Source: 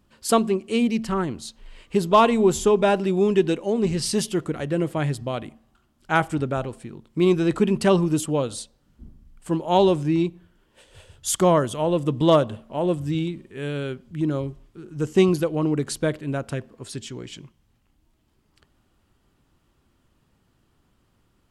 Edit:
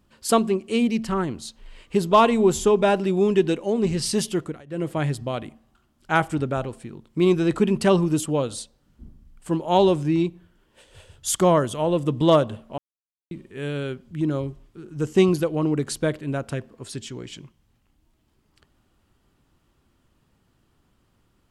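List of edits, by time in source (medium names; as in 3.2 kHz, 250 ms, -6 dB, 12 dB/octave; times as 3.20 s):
4.29–5.00 s: dip -20 dB, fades 0.34 s equal-power
12.78–13.31 s: mute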